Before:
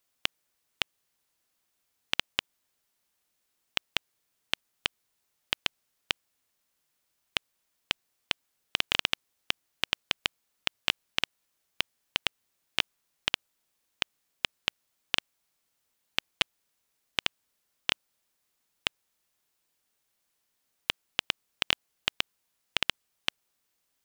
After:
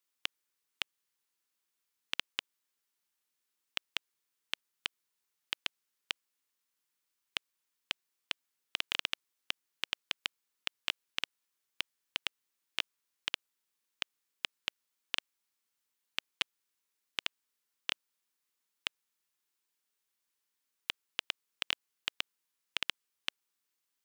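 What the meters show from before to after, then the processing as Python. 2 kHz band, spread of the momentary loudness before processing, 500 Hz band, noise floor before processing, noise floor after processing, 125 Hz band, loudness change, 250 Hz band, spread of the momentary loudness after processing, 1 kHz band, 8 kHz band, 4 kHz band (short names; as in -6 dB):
-6.5 dB, 5 LU, -11.5 dB, -78 dBFS, -85 dBFS, -15.0 dB, -6.5 dB, -11.0 dB, 5 LU, -8.5 dB, -6.5 dB, -6.5 dB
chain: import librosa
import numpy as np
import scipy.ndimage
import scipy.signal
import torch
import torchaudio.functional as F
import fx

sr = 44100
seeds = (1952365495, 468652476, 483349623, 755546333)

y = fx.highpass(x, sr, hz=320.0, slope=6)
y = fx.peak_eq(y, sr, hz=660.0, db=-13.0, octaves=0.33)
y = y * 10.0 ** (-6.5 / 20.0)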